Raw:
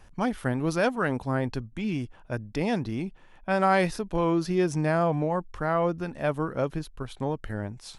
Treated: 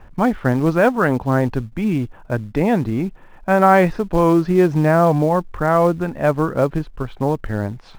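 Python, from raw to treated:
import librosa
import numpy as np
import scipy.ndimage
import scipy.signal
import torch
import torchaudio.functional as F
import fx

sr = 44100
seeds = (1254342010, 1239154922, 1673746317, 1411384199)

p1 = scipy.signal.sosfilt(scipy.signal.butter(2, 1900.0, 'lowpass', fs=sr, output='sos'), x)
p2 = fx.quant_float(p1, sr, bits=2)
p3 = p1 + (p2 * 10.0 ** (-7.0 / 20.0))
y = p3 * 10.0 ** (7.0 / 20.0)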